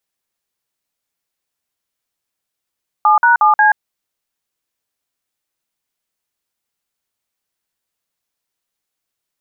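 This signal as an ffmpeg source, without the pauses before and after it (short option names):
-f lavfi -i "aevalsrc='0.316*clip(min(mod(t,0.18),0.129-mod(t,0.18))/0.002,0,1)*(eq(floor(t/0.18),0)*(sin(2*PI*852*mod(t,0.18))+sin(2*PI*1209*mod(t,0.18)))+eq(floor(t/0.18),1)*(sin(2*PI*941*mod(t,0.18))+sin(2*PI*1477*mod(t,0.18)))+eq(floor(t/0.18),2)*(sin(2*PI*852*mod(t,0.18))+sin(2*PI*1209*mod(t,0.18)))+eq(floor(t/0.18),3)*(sin(2*PI*852*mod(t,0.18))+sin(2*PI*1633*mod(t,0.18))))':d=0.72:s=44100"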